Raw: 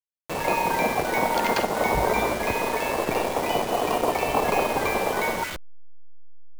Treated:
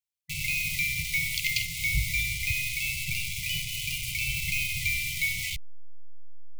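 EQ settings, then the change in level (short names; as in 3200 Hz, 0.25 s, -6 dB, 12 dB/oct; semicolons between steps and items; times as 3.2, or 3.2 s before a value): brick-wall FIR band-stop 160–2000 Hz; +3.0 dB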